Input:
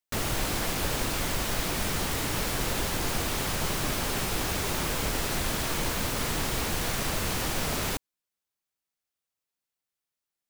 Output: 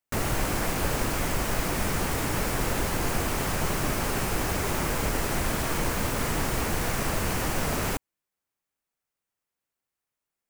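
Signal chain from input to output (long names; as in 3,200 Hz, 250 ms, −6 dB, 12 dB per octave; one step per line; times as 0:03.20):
parametric band 3,600 Hz −6.5 dB 0.65 octaves
in parallel at −7.5 dB: sample-rate reduction 7,300 Hz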